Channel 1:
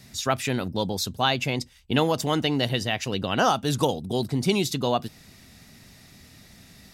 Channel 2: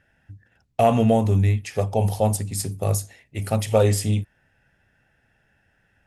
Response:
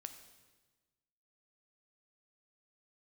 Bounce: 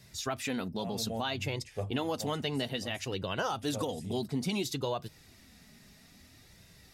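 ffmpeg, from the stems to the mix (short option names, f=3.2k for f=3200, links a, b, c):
-filter_complex "[0:a]flanger=delay=1.9:depth=3:regen=-35:speed=0.6:shape=sinusoidal,volume=-3dB,asplit=2[a][b];[1:a]volume=-12dB[c];[b]apad=whole_len=267434[d];[c][d]sidechaincompress=threshold=-43dB:ratio=8:attack=16:release=228[e];[a][e]amix=inputs=2:normalize=0,alimiter=limit=-22.5dB:level=0:latency=1:release=122"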